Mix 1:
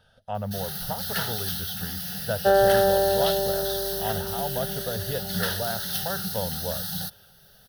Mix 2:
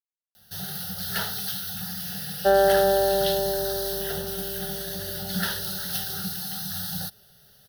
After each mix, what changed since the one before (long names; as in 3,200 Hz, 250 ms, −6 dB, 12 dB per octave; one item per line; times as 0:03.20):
speech: muted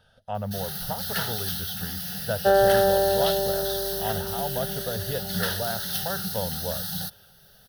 speech: unmuted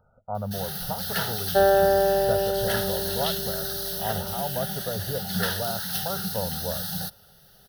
speech: add linear-phase brick-wall low-pass 1,500 Hz
first sound: add parametric band 490 Hz +4 dB 2.1 octaves
second sound: entry −0.90 s